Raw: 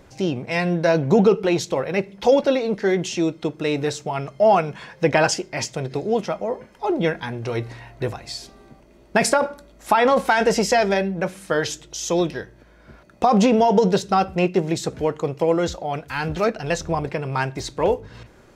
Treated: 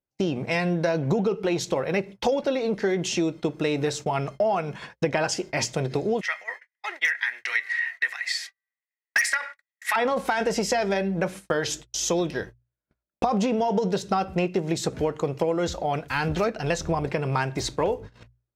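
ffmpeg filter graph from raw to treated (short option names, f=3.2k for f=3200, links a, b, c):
-filter_complex "[0:a]asettb=1/sr,asplit=3[a][b][c];[a]atrim=end=6.214[d];[b]atrim=start=6.21:end=9.96,asetpts=PTS-STARTPTS,afade=t=in:d=0.004:c=qsin,afade=t=out:st=3.746:d=0.004:c=qsin,highpass=f=1.9k:t=q:w=12,asoftclip=type=hard:threshold=-9.5dB[e];[c]atrim=start=9.956[f];[d][e]acrossfade=d=0.004:c1=hsin:c2=qsin[g];[g][f]acrossfade=d=0.004:c1=qsin:c2=hsin,acompressor=threshold=-23dB:ratio=6,agate=range=-46dB:threshold=-38dB:ratio=16:detection=peak,bandreject=f=60:t=h:w=6,bandreject=f=120:t=h:w=6,volume=2dB"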